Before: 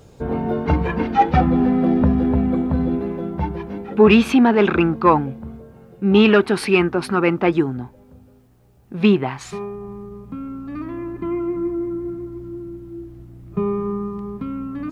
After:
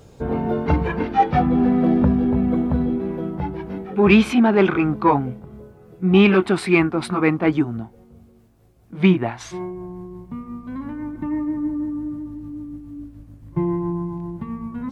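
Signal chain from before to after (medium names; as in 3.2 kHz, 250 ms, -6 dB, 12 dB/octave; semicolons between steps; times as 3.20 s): pitch bend over the whole clip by -3 st starting unshifted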